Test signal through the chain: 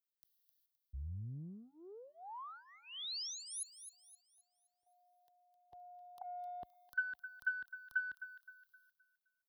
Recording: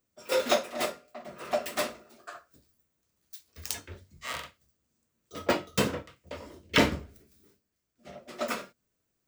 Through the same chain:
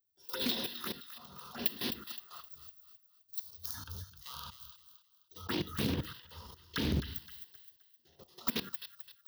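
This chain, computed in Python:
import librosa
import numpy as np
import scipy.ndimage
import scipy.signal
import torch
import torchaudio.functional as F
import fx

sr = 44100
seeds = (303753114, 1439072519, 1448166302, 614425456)

p1 = fx.transient(x, sr, attack_db=-7, sustain_db=12)
p2 = fx.level_steps(p1, sr, step_db=15)
p3 = scipy.signal.sosfilt(scipy.signal.butter(2, 43.0, 'highpass', fs=sr, output='sos'), p2)
p4 = fx.high_shelf(p3, sr, hz=6600.0, db=11.5)
p5 = fx.env_phaser(p4, sr, low_hz=200.0, high_hz=1300.0, full_db=-28.0)
p6 = fx.fixed_phaser(p5, sr, hz=2300.0, stages=6)
p7 = p6 + fx.echo_wet_highpass(p6, sr, ms=260, feedback_pct=36, hz=1500.0, wet_db=-10, dry=0)
p8 = fx.rider(p7, sr, range_db=3, speed_s=2.0)
p9 = fx.doppler_dist(p8, sr, depth_ms=0.57)
y = p9 * 10.0 ** (1.0 / 20.0)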